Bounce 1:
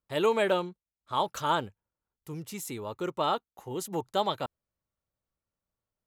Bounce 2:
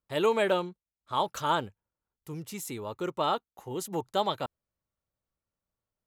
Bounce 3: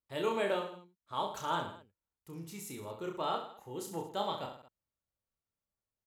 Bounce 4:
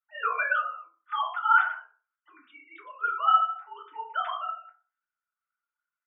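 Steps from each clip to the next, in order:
no processing that can be heard
reverse bouncing-ball delay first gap 30 ms, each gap 1.2×, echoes 5; level −8.5 dB
three sine waves on the formant tracks; high-pass with resonance 1,400 Hz, resonance Q 8.1; feedback delay network reverb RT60 0.37 s, low-frequency decay 0.95×, high-frequency decay 0.45×, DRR −3 dB

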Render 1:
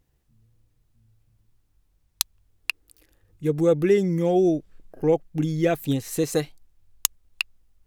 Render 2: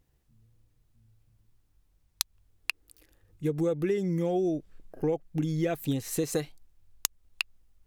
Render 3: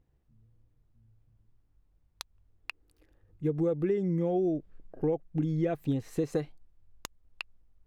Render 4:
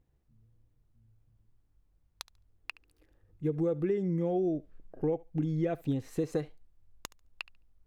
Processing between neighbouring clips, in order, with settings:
downward compressor 6 to 1, threshold −23 dBFS, peak gain reduction 9 dB; level −1.5 dB
low-pass filter 1,100 Hz 6 dB per octave
feedback echo with a high-pass in the loop 71 ms, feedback 18%, high-pass 540 Hz, level −20 dB; level −1.5 dB

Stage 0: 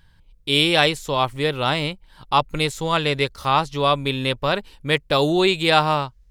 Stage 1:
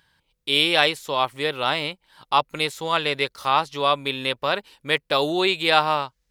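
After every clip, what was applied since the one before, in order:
dynamic equaliser 7,200 Hz, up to −6 dB, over −41 dBFS, Q 1.6
high-pass filter 500 Hz 6 dB per octave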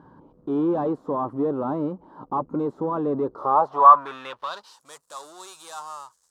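power curve on the samples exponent 0.5
band-pass filter sweep 280 Hz → 7,800 Hz, 0:03.24–0:04.86
high shelf with overshoot 1,600 Hz −12.5 dB, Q 3
level −1.5 dB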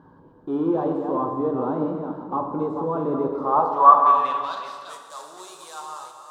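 delay that plays each chunk backwards 235 ms, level −7 dB
dense smooth reverb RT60 1.9 s, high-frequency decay 0.85×, DRR 3 dB
level −1.5 dB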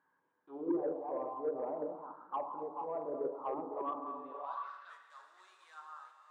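envelope filter 300–2,200 Hz, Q 3.6, down, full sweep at −16.5 dBFS
soft clipping −19 dBFS, distortion −19 dB
level −6 dB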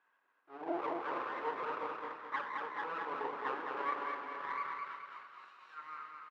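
lower of the sound and its delayed copy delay 0.72 ms
band-pass filter 530–2,900 Hz
on a send: repeating echo 213 ms, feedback 45%, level −4 dB
on the sum: level +4 dB

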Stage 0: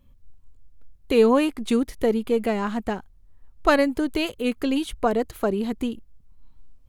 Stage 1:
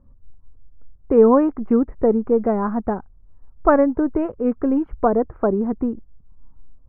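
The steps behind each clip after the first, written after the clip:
inverse Chebyshev low-pass filter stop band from 3,400 Hz, stop band 50 dB
level +4.5 dB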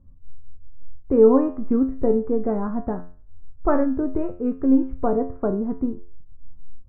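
low-shelf EQ 340 Hz +11 dB
tuned comb filter 88 Hz, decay 0.41 s, harmonics all, mix 80%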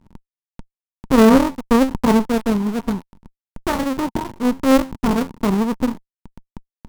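each half-wave held at its own peak
hollow resonant body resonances 210/920 Hz, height 13 dB, ringing for 25 ms
harmonic generator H 4 −9 dB, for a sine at 6.5 dBFS
level −9.5 dB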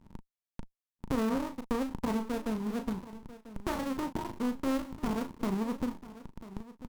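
downward compressor 3 to 1, threshold −28 dBFS, peak gain reduction 16 dB
double-tracking delay 37 ms −9 dB
single-tap delay 992 ms −16 dB
level −4.5 dB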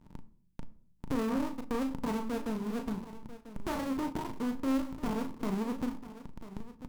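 soft clipping −23 dBFS, distortion −18 dB
on a send at −12.5 dB: convolution reverb RT60 0.55 s, pre-delay 7 ms

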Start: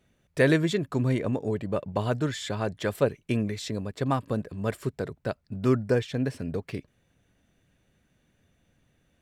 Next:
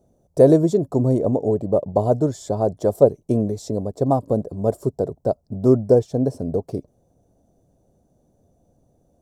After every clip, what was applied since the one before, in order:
drawn EQ curve 190 Hz 0 dB, 710 Hz +7 dB, 1,900 Hz −27 dB, 2,700 Hz −26 dB, 5,700 Hz −4 dB
level +5.5 dB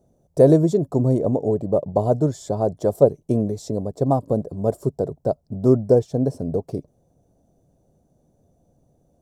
parametric band 150 Hz +4 dB 0.33 octaves
level −1 dB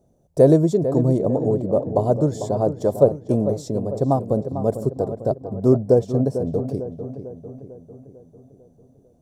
feedback echo with a low-pass in the loop 448 ms, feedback 54%, low-pass 2,500 Hz, level −10 dB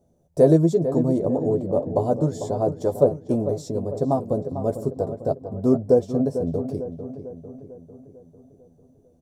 double-tracking delay 12 ms −6 dB
level −3 dB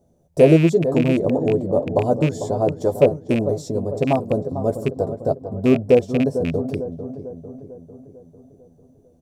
loose part that buzzes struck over −22 dBFS, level −22 dBFS
level +3 dB

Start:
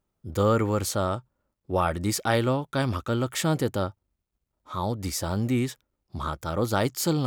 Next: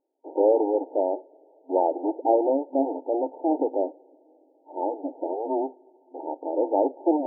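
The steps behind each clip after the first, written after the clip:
each half-wave held at its own peak
coupled-rooms reverb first 0.38 s, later 4.8 s, from −22 dB, DRR 16.5 dB
brick-wall band-pass 260–930 Hz
level +1.5 dB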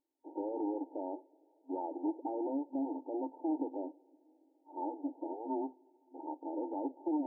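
brickwall limiter −16.5 dBFS, peak gain reduction 9 dB
flat-topped bell 550 Hz −11.5 dB 1.2 octaves
level −4.5 dB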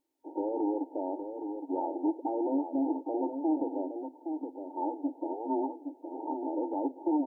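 slap from a distant wall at 140 metres, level −7 dB
level +5.5 dB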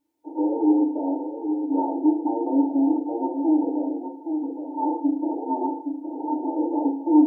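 feedback delay network reverb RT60 0.52 s, low-frequency decay 1.25×, high-frequency decay 0.5×, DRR −2 dB

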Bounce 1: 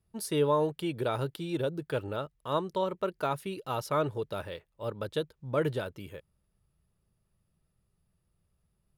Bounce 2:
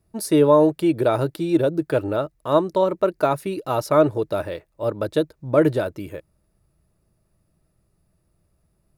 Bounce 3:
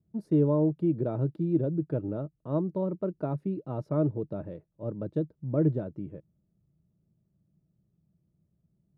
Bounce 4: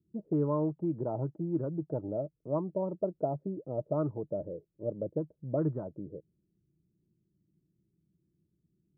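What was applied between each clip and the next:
thirty-one-band graphic EQ 315 Hz +9 dB, 630 Hz +7 dB, 3,150 Hz −8 dB; level +8 dB
resonant band-pass 170 Hz, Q 1.8; level +1 dB
envelope-controlled low-pass 340–1,200 Hz up, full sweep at −22 dBFS; level −6.5 dB

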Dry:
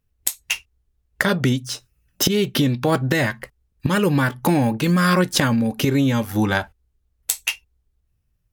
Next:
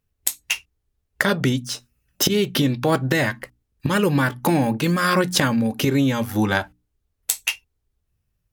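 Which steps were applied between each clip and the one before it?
low-shelf EQ 62 Hz −5.5 dB
mains-hum notches 60/120/180/240/300 Hz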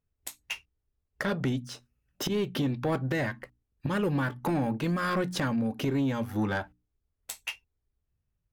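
high-shelf EQ 3,300 Hz −11 dB
soft clipping −14 dBFS, distortion −16 dB
level −6.5 dB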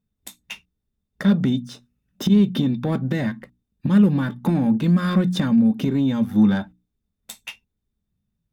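hollow resonant body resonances 200/3,600 Hz, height 18 dB, ringing for 60 ms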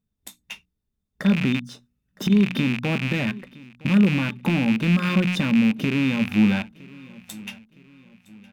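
loose part that buzzes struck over −28 dBFS, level −15 dBFS
repeating echo 963 ms, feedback 41%, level −22 dB
level −2 dB

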